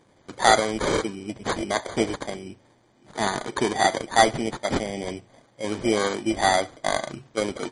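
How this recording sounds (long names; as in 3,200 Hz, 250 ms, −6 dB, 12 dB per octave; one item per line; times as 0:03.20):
aliases and images of a low sample rate 2,700 Hz, jitter 0%
MP3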